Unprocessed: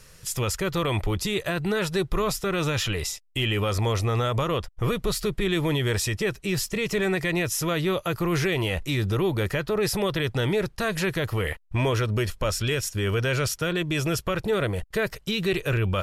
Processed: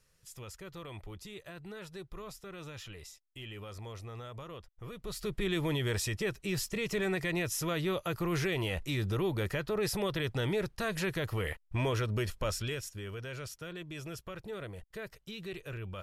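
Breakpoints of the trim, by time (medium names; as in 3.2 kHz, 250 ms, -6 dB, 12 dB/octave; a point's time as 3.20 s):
4.90 s -20 dB
5.35 s -7.5 dB
12.50 s -7.5 dB
13.10 s -17 dB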